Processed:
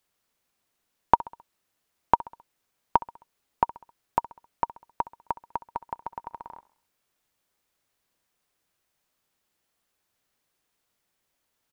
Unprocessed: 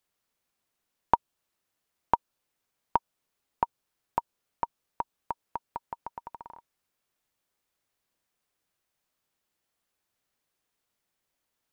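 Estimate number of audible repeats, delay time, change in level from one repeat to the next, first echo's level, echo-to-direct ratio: 3, 66 ms, −6.5 dB, −19.0 dB, −18.0 dB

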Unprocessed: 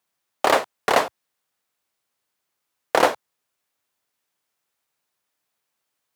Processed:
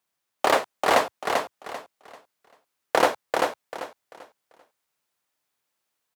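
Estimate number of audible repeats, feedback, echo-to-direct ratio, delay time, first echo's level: 3, 27%, −3.5 dB, 391 ms, −4.0 dB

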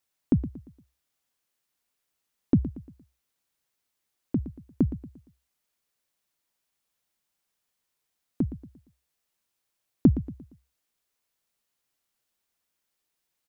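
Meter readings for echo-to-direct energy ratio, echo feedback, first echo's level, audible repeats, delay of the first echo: −13.0 dB, 39%, −13.5 dB, 3, 116 ms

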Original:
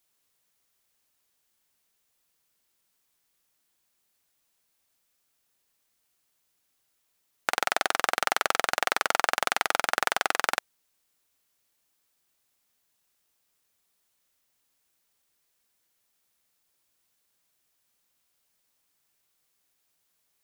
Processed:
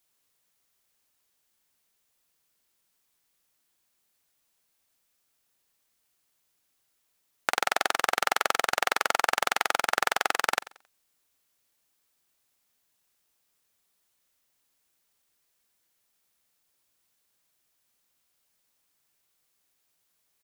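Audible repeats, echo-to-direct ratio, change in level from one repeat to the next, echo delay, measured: 2, −18.5 dB, −10.0 dB, 90 ms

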